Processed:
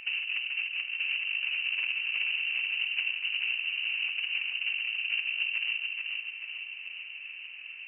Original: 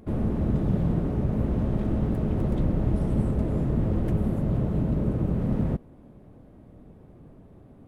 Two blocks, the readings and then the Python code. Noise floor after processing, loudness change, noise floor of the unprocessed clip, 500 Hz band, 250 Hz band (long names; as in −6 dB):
−44 dBFS, −3.5 dB, −51 dBFS, below −30 dB, below −40 dB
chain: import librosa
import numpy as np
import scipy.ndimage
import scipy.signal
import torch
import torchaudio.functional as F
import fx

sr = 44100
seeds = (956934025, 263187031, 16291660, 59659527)

y = fx.highpass(x, sr, hz=120.0, slope=6)
y = fx.over_compress(y, sr, threshold_db=-32.0, ratio=-0.5)
y = fx.air_absorb(y, sr, metres=240.0)
y = fx.echo_feedback(y, sr, ms=434, feedback_pct=52, wet_db=-3.5)
y = fx.freq_invert(y, sr, carrier_hz=2900)